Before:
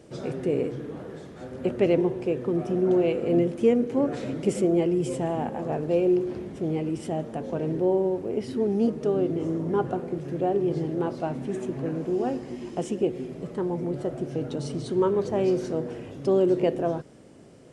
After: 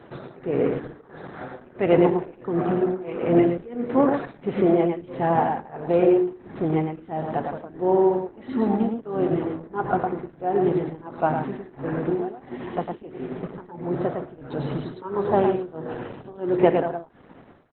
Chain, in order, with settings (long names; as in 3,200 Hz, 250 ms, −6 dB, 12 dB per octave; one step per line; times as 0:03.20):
high-pass filter 80 Hz 12 dB per octave
flat-topped bell 1,200 Hz +9.5 dB
0:08.29–0:08.83: comb filter 3.6 ms, depth 61%
0:15.15–0:16.29: notch filter 2,100 Hz, Q 5.5
hum removal 301.7 Hz, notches 10
amplitude tremolo 1.5 Hz, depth 95%
single-tap delay 108 ms −5 dB
level +4.5 dB
Opus 8 kbit/s 48,000 Hz